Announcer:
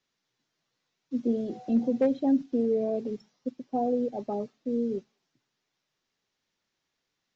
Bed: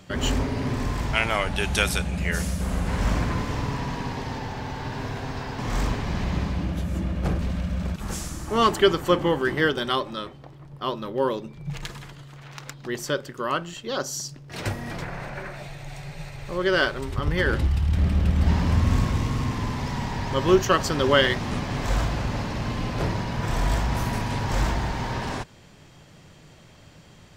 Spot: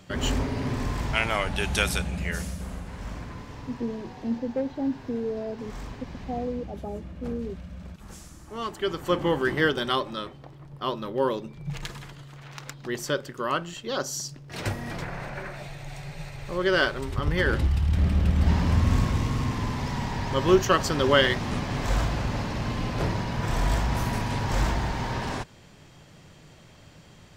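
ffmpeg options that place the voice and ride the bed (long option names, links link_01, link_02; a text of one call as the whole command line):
ffmpeg -i stem1.wav -i stem2.wav -filter_complex "[0:a]adelay=2550,volume=-4dB[link_01];[1:a]volume=10dB,afade=type=out:start_time=2:duration=0.9:silence=0.281838,afade=type=in:start_time=8.77:duration=0.6:silence=0.251189[link_02];[link_01][link_02]amix=inputs=2:normalize=0" out.wav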